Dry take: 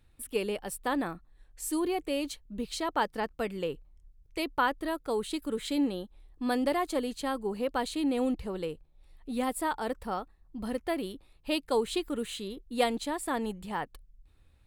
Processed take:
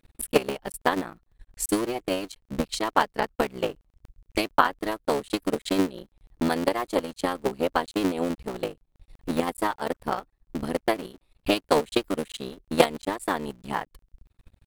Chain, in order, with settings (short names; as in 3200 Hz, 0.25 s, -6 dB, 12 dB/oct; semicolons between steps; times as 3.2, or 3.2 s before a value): cycle switcher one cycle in 3, muted; transient shaper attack +11 dB, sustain -8 dB; gain +1.5 dB